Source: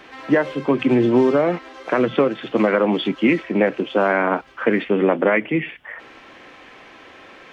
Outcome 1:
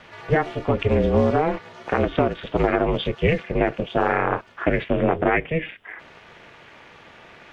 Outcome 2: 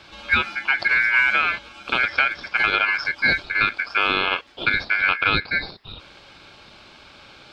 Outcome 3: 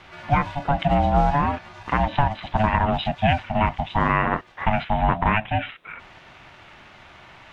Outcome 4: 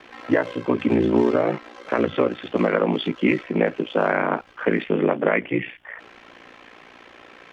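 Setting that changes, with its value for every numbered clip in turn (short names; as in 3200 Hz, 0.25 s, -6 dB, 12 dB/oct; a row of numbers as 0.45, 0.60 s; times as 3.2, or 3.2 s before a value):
ring modulator, frequency: 160, 1900, 430, 29 Hz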